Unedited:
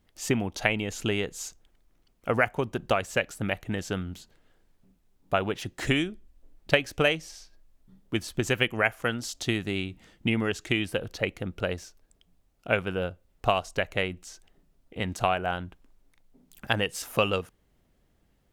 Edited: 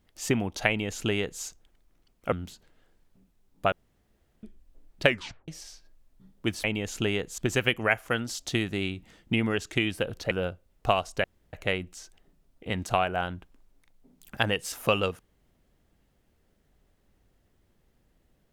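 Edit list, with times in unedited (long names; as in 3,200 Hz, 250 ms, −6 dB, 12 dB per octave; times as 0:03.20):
0:00.68–0:01.42: duplicate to 0:08.32
0:02.32–0:04.00: remove
0:05.40–0:06.11: fill with room tone
0:06.74: tape stop 0.42 s
0:11.25–0:12.90: remove
0:13.83: splice in room tone 0.29 s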